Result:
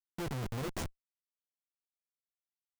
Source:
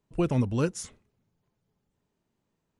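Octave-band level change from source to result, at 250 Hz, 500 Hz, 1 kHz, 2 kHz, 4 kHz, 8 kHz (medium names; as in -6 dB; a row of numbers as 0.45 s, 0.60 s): -13.5 dB, -11.5 dB, -5.5 dB, -4.0 dB, -2.0 dB, -8.0 dB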